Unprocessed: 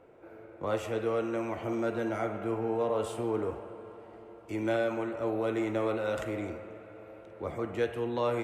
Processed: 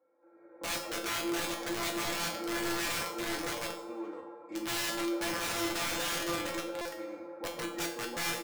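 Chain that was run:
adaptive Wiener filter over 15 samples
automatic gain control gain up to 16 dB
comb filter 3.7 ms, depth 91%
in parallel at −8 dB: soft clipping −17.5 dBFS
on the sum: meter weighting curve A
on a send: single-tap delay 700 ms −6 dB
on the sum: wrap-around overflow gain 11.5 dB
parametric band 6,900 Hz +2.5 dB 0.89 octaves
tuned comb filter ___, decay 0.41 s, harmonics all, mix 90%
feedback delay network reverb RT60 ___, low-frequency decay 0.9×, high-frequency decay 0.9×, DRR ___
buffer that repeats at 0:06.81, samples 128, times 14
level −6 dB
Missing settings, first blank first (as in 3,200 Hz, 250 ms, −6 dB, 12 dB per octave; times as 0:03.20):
170 Hz, 0.95 s, 11 dB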